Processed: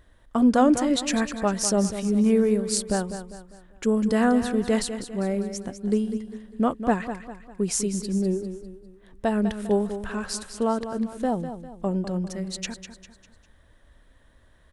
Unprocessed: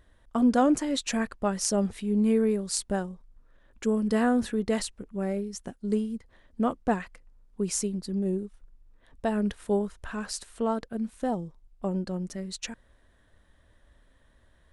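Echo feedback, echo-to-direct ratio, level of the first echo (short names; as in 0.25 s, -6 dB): 42%, -9.5 dB, -10.5 dB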